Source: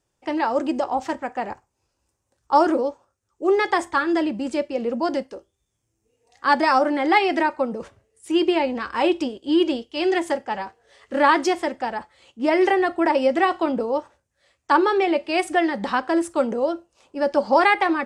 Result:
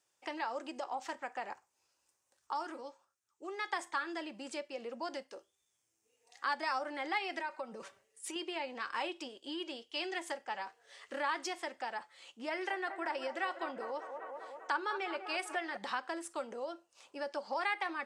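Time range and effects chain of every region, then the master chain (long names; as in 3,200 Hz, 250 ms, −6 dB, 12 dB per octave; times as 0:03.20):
0:02.53–0:03.73: parametric band 540 Hz −7.5 dB 0.61 octaves + tuned comb filter 180 Hz, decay 0.24 s, harmonics odd, mix 50%
0:07.39–0:08.36: downward compressor 2 to 1, threshold −26 dBFS + comb filter 5.2 ms, depth 49%
0:12.50–0:15.77: parametric band 1,500 Hz +6 dB 0.24 octaves + delay with a band-pass on its return 198 ms, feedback 60%, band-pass 840 Hz, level −10 dB
whole clip: downward compressor 2.5 to 1, threshold −34 dBFS; high-pass filter 1,300 Hz 6 dB per octave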